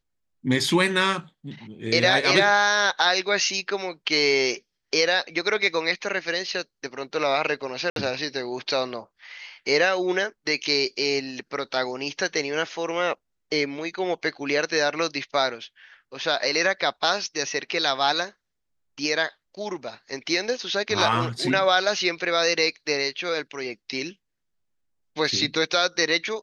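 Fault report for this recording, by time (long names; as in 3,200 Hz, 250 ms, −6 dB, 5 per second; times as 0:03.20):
0:07.90–0:07.96: drop-out 62 ms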